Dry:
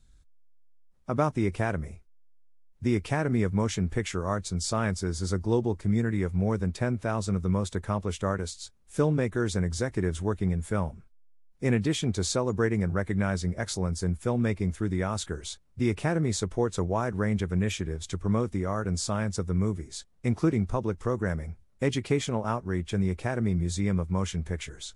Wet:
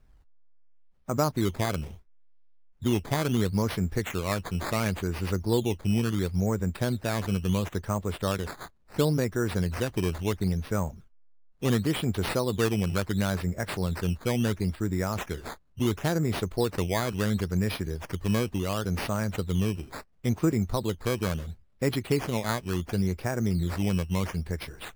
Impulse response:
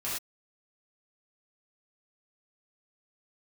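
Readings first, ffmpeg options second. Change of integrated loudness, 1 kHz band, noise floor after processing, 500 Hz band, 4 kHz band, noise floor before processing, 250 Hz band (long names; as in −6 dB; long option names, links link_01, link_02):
0.0 dB, 0.0 dB, −58 dBFS, 0.0 dB, +2.0 dB, −58 dBFS, 0.0 dB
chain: -af "acrusher=samples=11:mix=1:aa=0.000001:lfo=1:lforange=11:lforate=0.72"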